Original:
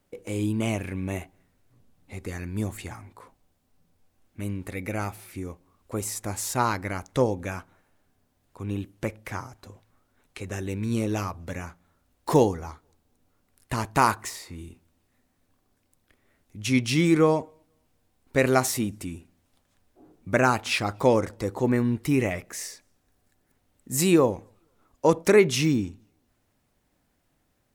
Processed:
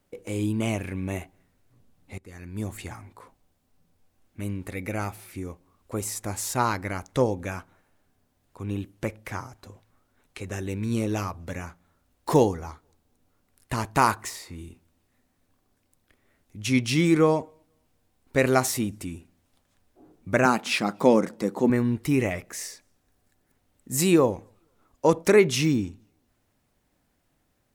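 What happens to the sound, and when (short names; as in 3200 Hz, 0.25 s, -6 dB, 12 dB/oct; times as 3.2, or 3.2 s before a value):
2.18–2.82 fade in, from -18.5 dB
20.45–21.7 resonant low shelf 130 Hz -13 dB, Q 3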